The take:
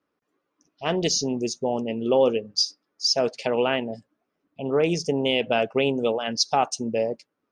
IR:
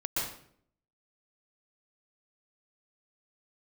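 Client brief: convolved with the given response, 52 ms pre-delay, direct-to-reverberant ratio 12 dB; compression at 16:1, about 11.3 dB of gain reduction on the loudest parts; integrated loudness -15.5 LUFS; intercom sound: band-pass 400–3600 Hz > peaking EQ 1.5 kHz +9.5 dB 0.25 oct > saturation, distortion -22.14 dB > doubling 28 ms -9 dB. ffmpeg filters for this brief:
-filter_complex "[0:a]acompressor=threshold=0.0501:ratio=16,asplit=2[s0][s1];[1:a]atrim=start_sample=2205,adelay=52[s2];[s1][s2]afir=irnorm=-1:irlink=0,volume=0.126[s3];[s0][s3]amix=inputs=2:normalize=0,highpass=400,lowpass=3600,equalizer=f=1500:t=o:w=0.25:g=9.5,asoftclip=threshold=0.106,asplit=2[s4][s5];[s5]adelay=28,volume=0.355[s6];[s4][s6]amix=inputs=2:normalize=0,volume=8.91"

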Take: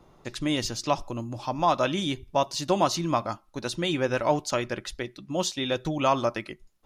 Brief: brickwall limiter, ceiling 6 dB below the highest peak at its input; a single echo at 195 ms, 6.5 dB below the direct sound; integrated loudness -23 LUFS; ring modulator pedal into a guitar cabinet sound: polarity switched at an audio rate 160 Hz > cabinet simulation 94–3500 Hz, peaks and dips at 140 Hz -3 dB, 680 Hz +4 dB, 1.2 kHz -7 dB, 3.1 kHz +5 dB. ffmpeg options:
-af "alimiter=limit=0.158:level=0:latency=1,aecho=1:1:195:0.473,aeval=exprs='val(0)*sgn(sin(2*PI*160*n/s))':c=same,highpass=94,equalizer=f=140:t=q:w=4:g=-3,equalizer=f=680:t=q:w=4:g=4,equalizer=f=1200:t=q:w=4:g=-7,equalizer=f=3100:t=q:w=4:g=5,lowpass=f=3500:w=0.5412,lowpass=f=3500:w=1.3066,volume=2"

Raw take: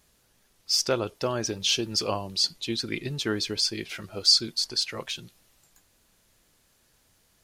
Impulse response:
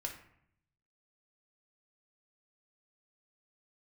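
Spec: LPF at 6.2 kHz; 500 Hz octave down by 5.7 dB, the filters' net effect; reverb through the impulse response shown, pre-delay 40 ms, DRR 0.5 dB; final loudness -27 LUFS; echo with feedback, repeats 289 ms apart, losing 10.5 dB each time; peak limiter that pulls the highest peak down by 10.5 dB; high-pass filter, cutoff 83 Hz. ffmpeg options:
-filter_complex "[0:a]highpass=83,lowpass=6200,equalizer=f=500:t=o:g=-7.5,alimiter=limit=0.112:level=0:latency=1,aecho=1:1:289|578|867:0.299|0.0896|0.0269,asplit=2[s0][s1];[1:a]atrim=start_sample=2205,adelay=40[s2];[s1][s2]afir=irnorm=-1:irlink=0,volume=1[s3];[s0][s3]amix=inputs=2:normalize=0,volume=1.12"

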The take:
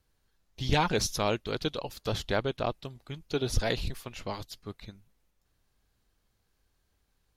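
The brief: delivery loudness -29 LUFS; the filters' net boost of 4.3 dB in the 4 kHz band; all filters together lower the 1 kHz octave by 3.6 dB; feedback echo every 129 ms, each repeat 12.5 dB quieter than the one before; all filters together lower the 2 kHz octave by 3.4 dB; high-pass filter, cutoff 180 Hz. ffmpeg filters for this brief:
-af "highpass=180,equalizer=f=1000:t=o:g=-4,equalizer=f=2000:t=o:g=-5.5,equalizer=f=4000:t=o:g=7,aecho=1:1:129|258|387:0.237|0.0569|0.0137,volume=1.33"

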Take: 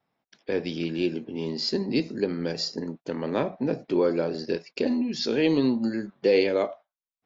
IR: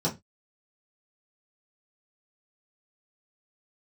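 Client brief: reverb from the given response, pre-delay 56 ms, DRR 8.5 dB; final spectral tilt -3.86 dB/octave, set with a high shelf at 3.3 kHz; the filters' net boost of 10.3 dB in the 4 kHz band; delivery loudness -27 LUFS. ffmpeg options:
-filter_complex "[0:a]highshelf=f=3300:g=6.5,equalizer=f=4000:t=o:g=7.5,asplit=2[s0][s1];[1:a]atrim=start_sample=2205,adelay=56[s2];[s1][s2]afir=irnorm=-1:irlink=0,volume=0.133[s3];[s0][s3]amix=inputs=2:normalize=0,volume=0.596"

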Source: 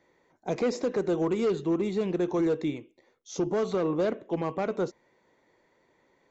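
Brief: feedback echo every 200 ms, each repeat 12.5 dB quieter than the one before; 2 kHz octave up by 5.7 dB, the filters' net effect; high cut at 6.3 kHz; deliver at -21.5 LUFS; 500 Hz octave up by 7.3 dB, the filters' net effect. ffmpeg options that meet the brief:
-af "lowpass=6300,equalizer=f=500:t=o:g=8.5,equalizer=f=2000:t=o:g=7,aecho=1:1:200|400|600:0.237|0.0569|0.0137,volume=1.19"

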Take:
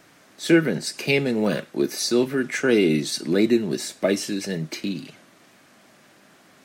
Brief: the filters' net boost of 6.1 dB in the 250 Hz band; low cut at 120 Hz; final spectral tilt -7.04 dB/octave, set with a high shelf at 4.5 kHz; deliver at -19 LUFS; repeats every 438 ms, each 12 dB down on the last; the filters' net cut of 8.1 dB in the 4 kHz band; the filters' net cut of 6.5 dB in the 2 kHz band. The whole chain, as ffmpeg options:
-af "highpass=120,equalizer=f=250:t=o:g=8.5,equalizer=f=2000:t=o:g=-6.5,equalizer=f=4000:t=o:g=-6,highshelf=f=4500:g=-4.5,aecho=1:1:438|876|1314:0.251|0.0628|0.0157,volume=0.944"

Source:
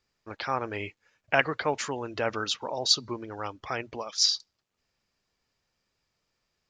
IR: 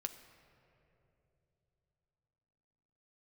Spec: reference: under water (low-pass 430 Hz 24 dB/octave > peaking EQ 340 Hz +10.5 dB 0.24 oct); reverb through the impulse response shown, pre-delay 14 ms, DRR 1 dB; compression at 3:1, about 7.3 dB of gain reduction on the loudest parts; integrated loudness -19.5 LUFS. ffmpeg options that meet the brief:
-filter_complex "[0:a]acompressor=threshold=0.0398:ratio=3,asplit=2[s0][s1];[1:a]atrim=start_sample=2205,adelay=14[s2];[s1][s2]afir=irnorm=-1:irlink=0,volume=1.12[s3];[s0][s3]amix=inputs=2:normalize=0,lowpass=f=430:w=0.5412,lowpass=f=430:w=1.3066,equalizer=f=340:t=o:w=0.24:g=10.5,volume=5.96"

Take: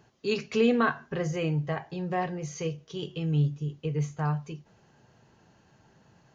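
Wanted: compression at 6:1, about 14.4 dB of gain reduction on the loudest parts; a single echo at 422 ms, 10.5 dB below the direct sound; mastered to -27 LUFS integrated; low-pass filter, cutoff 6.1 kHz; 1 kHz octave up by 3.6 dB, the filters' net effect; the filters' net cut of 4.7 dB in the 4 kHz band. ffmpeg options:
-af "lowpass=6100,equalizer=f=1000:t=o:g=5,equalizer=f=4000:t=o:g=-7,acompressor=threshold=0.02:ratio=6,aecho=1:1:422:0.299,volume=3.76"

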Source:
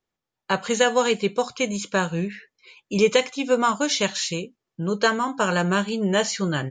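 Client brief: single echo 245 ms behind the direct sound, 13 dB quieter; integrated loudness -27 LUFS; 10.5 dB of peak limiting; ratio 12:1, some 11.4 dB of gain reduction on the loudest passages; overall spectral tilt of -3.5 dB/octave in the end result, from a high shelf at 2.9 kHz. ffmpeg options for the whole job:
-af "highshelf=f=2900:g=7.5,acompressor=threshold=0.0631:ratio=12,alimiter=limit=0.0794:level=0:latency=1,aecho=1:1:245:0.224,volume=1.78"

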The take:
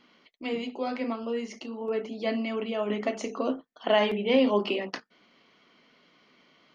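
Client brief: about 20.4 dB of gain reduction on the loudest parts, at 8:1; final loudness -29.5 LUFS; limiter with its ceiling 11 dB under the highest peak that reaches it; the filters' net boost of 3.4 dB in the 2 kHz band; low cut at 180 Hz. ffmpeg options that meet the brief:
-af "highpass=180,equalizer=f=2000:t=o:g=4,acompressor=threshold=0.0112:ratio=8,volume=6.31,alimiter=limit=0.0944:level=0:latency=1"

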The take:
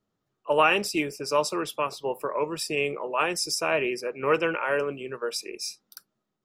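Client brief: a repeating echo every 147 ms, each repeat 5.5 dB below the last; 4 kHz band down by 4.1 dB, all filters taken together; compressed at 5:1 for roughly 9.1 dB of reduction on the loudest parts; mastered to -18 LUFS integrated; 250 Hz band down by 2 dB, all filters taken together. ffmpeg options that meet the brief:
-af "equalizer=f=250:t=o:g=-3,equalizer=f=4000:t=o:g=-6.5,acompressor=threshold=0.0447:ratio=5,aecho=1:1:147|294|441|588|735|882|1029:0.531|0.281|0.149|0.079|0.0419|0.0222|0.0118,volume=4.47"

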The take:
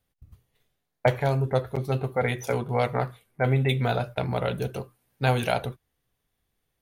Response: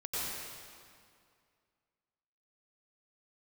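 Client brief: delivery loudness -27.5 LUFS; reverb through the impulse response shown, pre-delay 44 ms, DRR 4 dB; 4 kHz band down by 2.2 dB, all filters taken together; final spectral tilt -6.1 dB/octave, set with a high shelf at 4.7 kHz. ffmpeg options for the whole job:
-filter_complex "[0:a]equalizer=f=4000:t=o:g=-5,highshelf=f=4700:g=5.5,asplit=2[s0][s1];[1:a]atrim=start_sample=2205,adelay=44[s2];[s1][s2]afir=irnorm=-1:irlink=0,volume=0.355[s3];[s0][s3]amix=inputs=2:normalize=0,volume=0.794"

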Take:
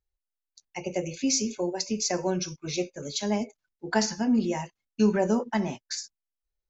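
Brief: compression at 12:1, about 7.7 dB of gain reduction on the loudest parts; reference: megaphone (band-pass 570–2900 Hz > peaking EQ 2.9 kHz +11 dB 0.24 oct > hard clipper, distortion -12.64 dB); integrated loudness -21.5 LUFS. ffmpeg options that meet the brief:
-af "acompressor=threshold=0.0501:ratio=12,highpass=570,lowpass=2900,equalizer=f=2900:t=o:w=0.24:g=11,asoftclip=type=hard:threshold=0.0299,volume=8.41"

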